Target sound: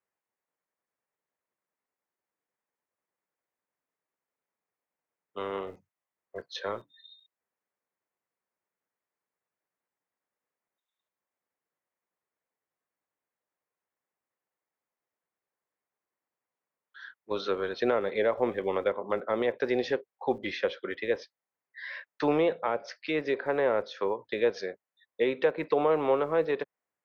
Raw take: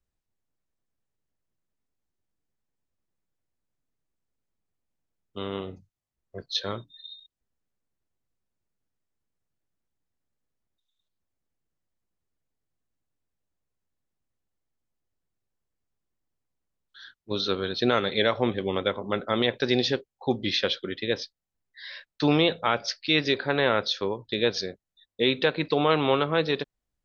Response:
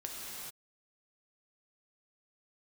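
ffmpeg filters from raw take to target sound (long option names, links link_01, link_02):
-filter_complex "[0:a]equalizer=frequency=125:width_type=o:width=1:gain=-7,equalizer=frequency=250:width_type=o:width=1:gain=-3,equalizer=frequency=500:width_type=o:width=1:gain=6,equalizer=frequency=1000:width_type=o:width=1:gain=8,equalizer=frequency=2000:width_type=o:width=1:gain=9,equalizer=frequency=4000:width_type=o:width=1:gain=-8,acrossover=split=110|650[link_01][link_02][link_03];[link_01]acrusher=bits=6:dc=4:mix=0:aa=0.000001[link_04];[link_03]acompressor=threshold=-29dB:ratio=6[link_05];[link_04][link_02][link_05]amix=inputs=3:normalize=0,volume=-5dB"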